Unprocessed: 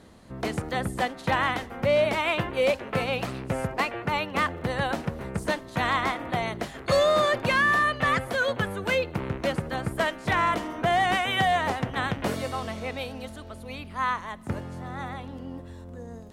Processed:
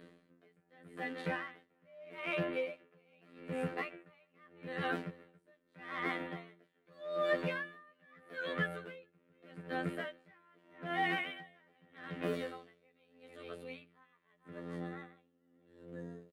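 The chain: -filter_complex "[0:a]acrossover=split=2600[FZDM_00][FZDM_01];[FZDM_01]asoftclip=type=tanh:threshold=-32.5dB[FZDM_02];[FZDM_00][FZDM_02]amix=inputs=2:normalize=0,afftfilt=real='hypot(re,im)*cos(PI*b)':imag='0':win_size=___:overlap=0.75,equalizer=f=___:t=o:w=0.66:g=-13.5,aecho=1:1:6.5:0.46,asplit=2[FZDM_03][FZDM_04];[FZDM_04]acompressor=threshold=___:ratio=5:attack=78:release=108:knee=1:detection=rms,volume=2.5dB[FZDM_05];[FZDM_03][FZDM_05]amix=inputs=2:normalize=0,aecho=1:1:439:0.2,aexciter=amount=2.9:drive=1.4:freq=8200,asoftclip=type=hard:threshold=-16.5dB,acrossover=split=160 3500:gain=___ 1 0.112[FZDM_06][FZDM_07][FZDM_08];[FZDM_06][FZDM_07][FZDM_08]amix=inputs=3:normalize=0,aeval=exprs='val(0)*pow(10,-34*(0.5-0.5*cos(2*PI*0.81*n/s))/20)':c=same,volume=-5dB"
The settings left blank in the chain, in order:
2048, 900, -37dB, 0.0891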